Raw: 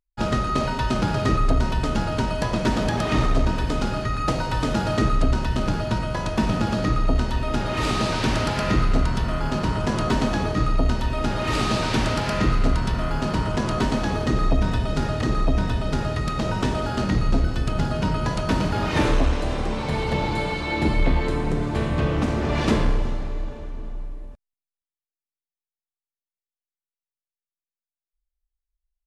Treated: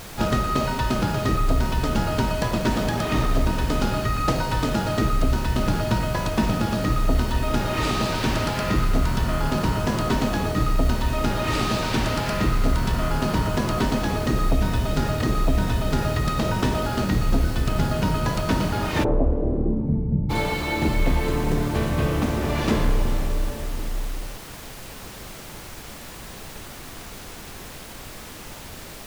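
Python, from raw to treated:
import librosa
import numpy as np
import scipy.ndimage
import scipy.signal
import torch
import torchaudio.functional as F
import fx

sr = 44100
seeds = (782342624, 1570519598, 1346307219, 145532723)

y = fx.rider(x, sr, range_db=4, speed_s=0.5)
y = fx.dmg_noise_colour(y, sr, seeds[0], colour='pink', level_db=-38.0)
y = fx.lowpass_res(y, sr, hz=fx.line((19.03, 690.0), (20.29, 160.0)), q=1.7, at=(19.03, 20.29), fade=0.02)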